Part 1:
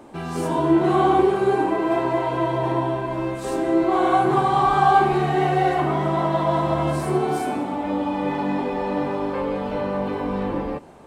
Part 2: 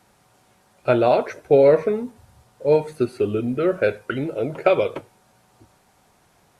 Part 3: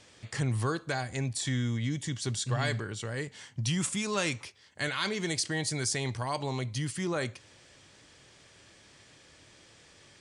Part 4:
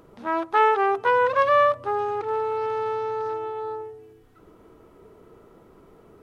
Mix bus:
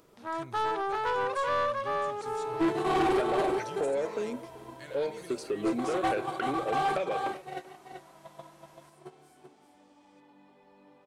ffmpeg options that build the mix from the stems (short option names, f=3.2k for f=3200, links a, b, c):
-filter_complex "[0:a]agate=range=-26dB:threshold=-16dB:ratio=16:detection=peak,highshelf=f=2.9k:g=10,adelay=1900,volume=-1dB,afade=t=out:st=5.83:d=0.49:silence=0.354813,asplit=2[a][b];[b]volume=-7dB[c];[1:a]equalizer=f=120:w=1.5:g=-12,acompressor=threshold=-24dB:ratio=6,adelay=2300,volume=-2dB,asplit=2[d][e];[e]volume=-21.5dB[f];[2:a]volume=-16dB[g];[3:a]highshelf=f=4.1k:g=10.5,volume=-8.5dB,asplit=2[h][i];[i]volume=-5dB[j];[c][f][j]amix=inputs=3:normalize=0,aecho=0:1:385:1[k];[a][d][g][h][k]amix=inputs=5:normalize=0,lowshelf=f=140:g=-6.5,asoftclip=type=tanh:threshold=-22dB"